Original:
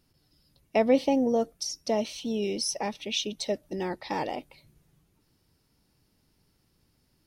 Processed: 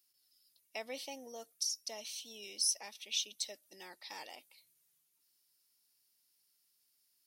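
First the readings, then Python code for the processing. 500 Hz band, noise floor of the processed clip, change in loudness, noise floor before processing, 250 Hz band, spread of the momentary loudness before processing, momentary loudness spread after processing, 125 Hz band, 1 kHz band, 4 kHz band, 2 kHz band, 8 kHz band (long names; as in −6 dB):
−22.5 dB, −76 dBFS, −9.5 dB, −70 dBFS, −29.0 dB, 10 LU, 18 LU, below −30 dB, −19.0 dB, −4.5 dB, −10.0 dB, −1.0 dB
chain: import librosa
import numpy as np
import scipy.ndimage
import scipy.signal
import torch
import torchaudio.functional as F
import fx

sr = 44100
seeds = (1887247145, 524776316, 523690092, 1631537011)

y = np.diff(x, prepend=0.0)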